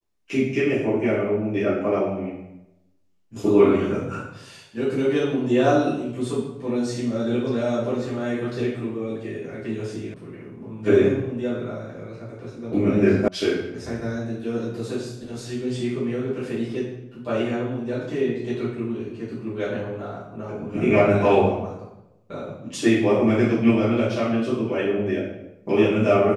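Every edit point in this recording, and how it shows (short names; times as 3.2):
10.14 sound cut off
13.28 sound cut off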